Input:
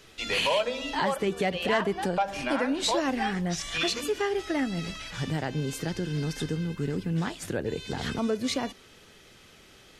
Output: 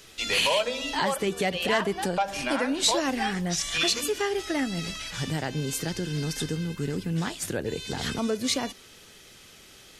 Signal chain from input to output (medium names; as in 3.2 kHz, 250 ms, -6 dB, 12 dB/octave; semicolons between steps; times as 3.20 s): treble shelf 4 kHz +9.5 dB